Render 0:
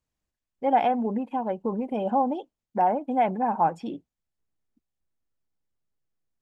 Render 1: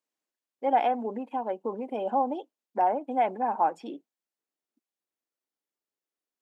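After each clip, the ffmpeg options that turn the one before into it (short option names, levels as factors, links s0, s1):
-af "highpass=f=270:w=0.5412,highpass=f=270:w=1.3066,volume=0.794"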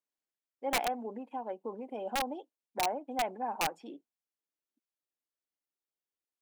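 -af "aeval=exprs='(mod(6.31*val(0)+1,2)-1)/6.31':c=same,volume=0.422"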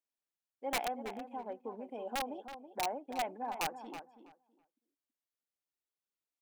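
-filter_complex "[0:a]asplit=2[s0][s1];[s1]adelay=326,lowpass=f=2700:p=1,volume=0.316,asplit=2[s2][s3];[s3]adelay=326,lowpass=f=2700:p=1,volume=0.18,asplit=2[s4][s5];[s5]adelay=326,lowpass=f=2700:p=1,volume=0.18[s6];[s0][s2][s4][s6]amix=inputs=4:normalize=0,volume=0.631"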